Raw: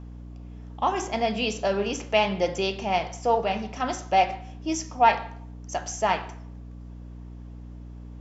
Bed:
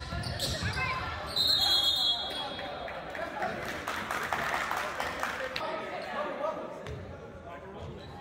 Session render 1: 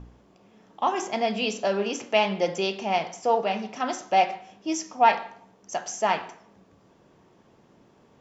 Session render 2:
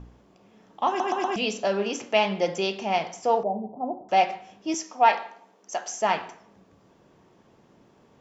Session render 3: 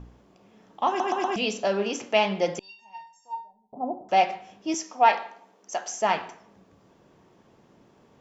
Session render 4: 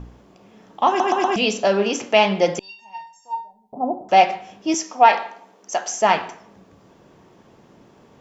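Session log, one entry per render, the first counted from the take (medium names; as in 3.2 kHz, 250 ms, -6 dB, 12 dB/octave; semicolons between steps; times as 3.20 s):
de-hum 60 Hz, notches 5
0.88 s: stutter in place 0.12 s, 4 plays; 3.43–4.09 s: steep low-pass 860 Hz 48 dB/octave; 4.74–6.02 s: high-pass 300 Hz
2.59–3.73 s: feedback comb 920 Hz, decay 0.31 s, mix 100%
trim +7 dB; peak limiter -2 dBFS, peak gain reduction 2.5 dB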